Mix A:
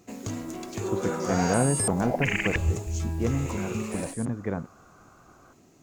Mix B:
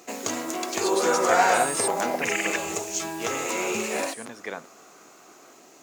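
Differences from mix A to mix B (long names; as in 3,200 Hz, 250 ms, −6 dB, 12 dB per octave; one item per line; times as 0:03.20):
speech: remove low-pass filter 1,300 Hz
first sound +11.5 dB
master: add high-pass filter 490 Hz 12 dB per octave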